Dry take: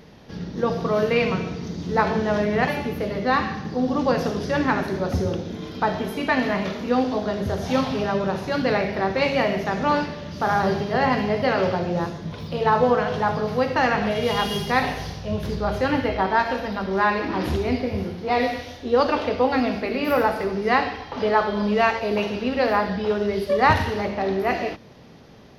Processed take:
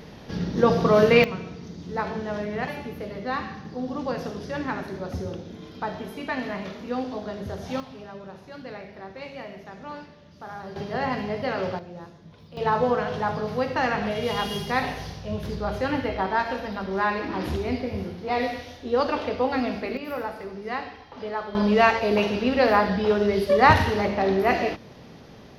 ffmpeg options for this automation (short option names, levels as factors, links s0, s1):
-af "asetnsamples=n=441:p=0,asendcmd='1.24 volume volume -8dB;7.8 volume volume -17dB;10.76 volume volume -6.5dB;11.79 volume volume -16dB;12.57 volume volume -4dB;19.97 volume volume -11dB;21.55 volume volume 1.5dB',volume=1.58"